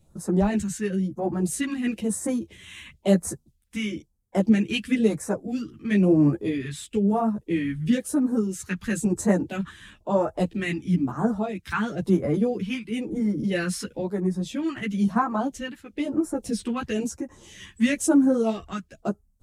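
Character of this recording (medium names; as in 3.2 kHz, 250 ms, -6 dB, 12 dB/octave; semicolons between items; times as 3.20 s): phasing stages 2, 1 Hz, lowest notch 560–2900 Hz; tremolo triangle 0.68 Hz, depth 55%; a shimmering, thickened sound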